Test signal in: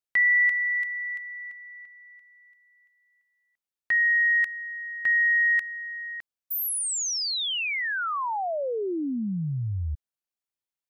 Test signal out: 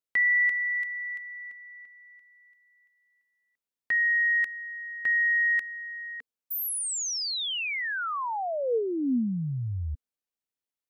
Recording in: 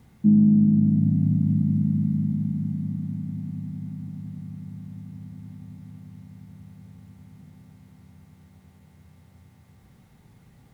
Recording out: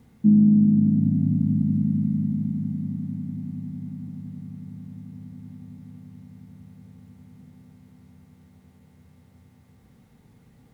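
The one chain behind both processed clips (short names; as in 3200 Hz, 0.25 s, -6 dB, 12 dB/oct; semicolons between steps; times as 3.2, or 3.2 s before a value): small resonant body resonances 250/460 Hz, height 7 dB, ringing for 40 ms; gain -2.5 dB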